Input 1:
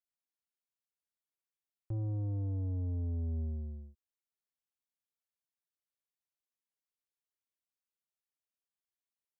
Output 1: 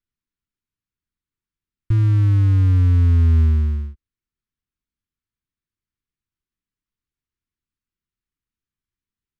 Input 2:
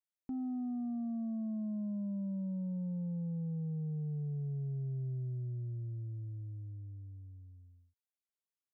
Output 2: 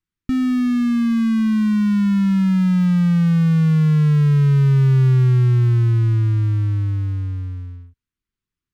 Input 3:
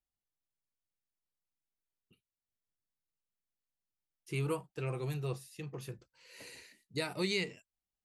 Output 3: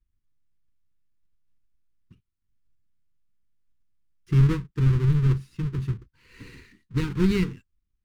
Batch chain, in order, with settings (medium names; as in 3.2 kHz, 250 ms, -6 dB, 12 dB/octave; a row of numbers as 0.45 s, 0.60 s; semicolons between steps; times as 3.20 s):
square wave that keeps the level; Butterworth band-stop 650 Hz, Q 0.94; RIAA curve playback; peak normalisation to -9 dBFS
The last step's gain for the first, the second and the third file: +6.5 dB, +11.5 dB, +2.5 dB